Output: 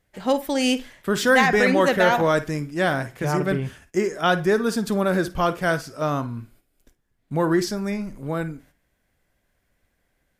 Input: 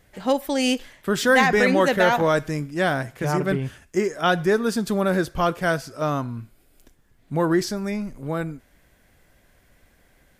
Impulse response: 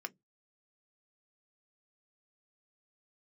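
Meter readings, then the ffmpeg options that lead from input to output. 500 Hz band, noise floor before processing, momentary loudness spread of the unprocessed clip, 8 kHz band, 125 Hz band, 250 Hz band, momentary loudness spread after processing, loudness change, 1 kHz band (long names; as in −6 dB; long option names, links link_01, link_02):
0.0 dB, −60 dBFS, 11 LU, 0.0 dB, 0.0 dB, 0.0 dB, 11 LU, 0.0 dB, 0.0 dB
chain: -filter_complex "[0:a]agate=range=-12dB:threshold=-51dB:ratio=16:detection=peak,asplit=2[link_01][link_02];[1:a]atrim=start_sample=2205,adelay=52[link_03];[link_02][link_03]afir=irnorm=-1:irlink=0,volume=-12.5dB[link_04];[link_01][link_04]amix=inputs=2:normalize=0"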